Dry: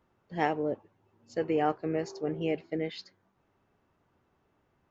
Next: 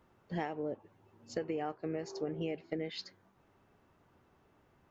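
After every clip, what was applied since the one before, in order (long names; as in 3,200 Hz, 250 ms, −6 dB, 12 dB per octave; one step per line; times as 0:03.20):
downward compressor 12 to 1, threshold −37 dBFS, peak gain reduction 16 dB
level +4 dB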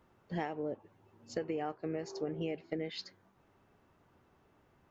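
no processing that can be heard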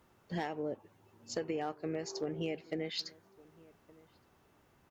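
high-shelf EQ 3,800 Hz +10 dB
asymmetric clip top −27.5 dBFS
slap from a distant wall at 200 metres, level −23 dB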